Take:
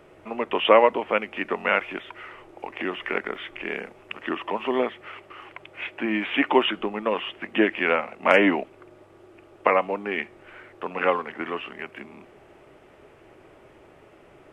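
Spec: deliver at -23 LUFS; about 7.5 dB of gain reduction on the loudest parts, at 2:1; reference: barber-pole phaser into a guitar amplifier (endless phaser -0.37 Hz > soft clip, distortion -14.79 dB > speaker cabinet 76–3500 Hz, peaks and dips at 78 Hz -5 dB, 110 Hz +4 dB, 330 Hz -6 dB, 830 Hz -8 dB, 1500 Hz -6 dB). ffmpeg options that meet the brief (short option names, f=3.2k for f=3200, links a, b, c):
-filter_complex "[0:a]acompressor=threshold=-25dB:ratio=2,asplit=2[a][b];[b]afreqshift=-0.37[c];[a][c]amix=inputs=2:normalize=1,asoftclip=threshold=-21.5dB,highpass=76,equalizer=f=78:t=q:w=4:g=-5,equalizer=f=110:t=q:w=4:g=4,equalizer=f=330:t=q:w=4:g=-6,equalizer=f=830:t=q:w=4:g=-8,equalizer=f=1.5k:t=q:w=4:g=-6,lowpass=f=3.5k:w=0.5412,lowpass=f=3.5k:w=1.3066,volume=13.5dB"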